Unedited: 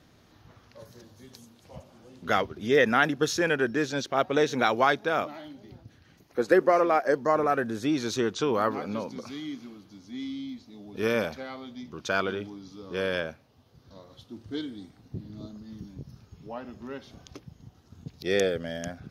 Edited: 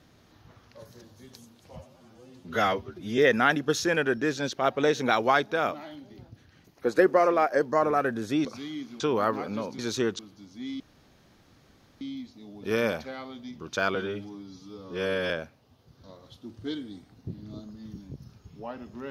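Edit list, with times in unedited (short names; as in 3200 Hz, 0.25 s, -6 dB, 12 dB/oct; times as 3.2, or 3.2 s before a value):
1.77–2.71 stretch 1.5×
7.98–8.38 swap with 9.17–9.72
10.33 insert room tone 1.21 s
12.27–13.17 stretch 1.5×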